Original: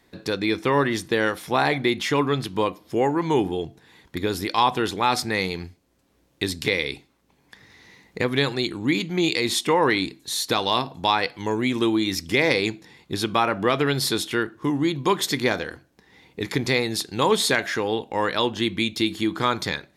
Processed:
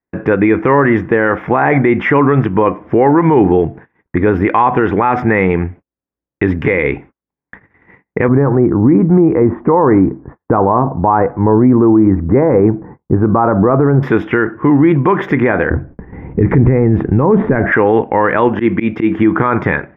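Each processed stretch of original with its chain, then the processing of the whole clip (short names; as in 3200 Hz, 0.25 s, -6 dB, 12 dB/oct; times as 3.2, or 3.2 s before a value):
8.28–14.03 LPF 1200 Hz 24 dB/oct + low shelf 140 Hz +7.5 dB
15.7–17.72 treble ducked by the level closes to 2000 Hz, closed at -18.5 dBFS + tilt -4.5 dB/oct
18.49–19.19 HPF 260 Hz 6 dB/oct + low shelf 340 Hz +5.5 dB + auto swell 0.105 s
whole clip: gate -48 dBFS, range -42 dB; inverse Chebyshev low-pass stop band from 3900 Hz, stop band 40 dB; maximiser +19 dB; gain -1 dB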